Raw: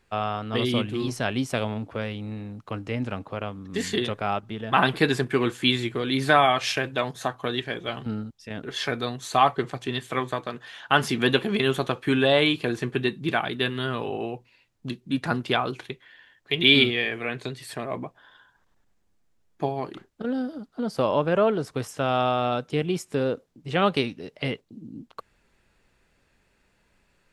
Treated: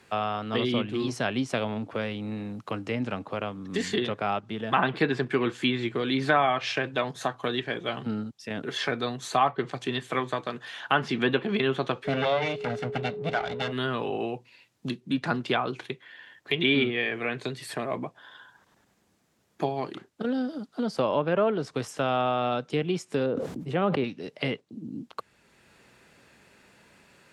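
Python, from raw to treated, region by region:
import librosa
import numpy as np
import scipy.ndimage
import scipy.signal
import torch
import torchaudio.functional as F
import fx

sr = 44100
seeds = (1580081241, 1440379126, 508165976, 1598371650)

y = fx.lower_of_two(x, sr, delay_ms=1.4, at=(12.04, 13.71), fade=0.02)
y = fx.lowpass(y, sr, hz=2400.0, slope=6, at=(12.04, 13.71), fade=0.02)
y = fx.dmg_tone(y, sr, hz=420.0, level_db=-34.0, at=(12.04, 13.71), fade=0.02)
y = fx.chain(y, sr, fx.peak_eq(hz=5100.0, db=-14.0, octaves=2.9),
    fx.sustainer(db_per_s=38.0), at=(23.26, 24.04))
y = scipy.signal.sosfilt(scipy.signal.butter(2, 120.0, 'highpass', fs=sr, output='sos'), y)
y = fx.env_lowpass_down(y, sr, base_hz=2400.0, full_db=-17.0)
y = fx.band_squash(y, sr, depth_pct=40)
y = y * 10.0 ** (-1.5 / 20.0)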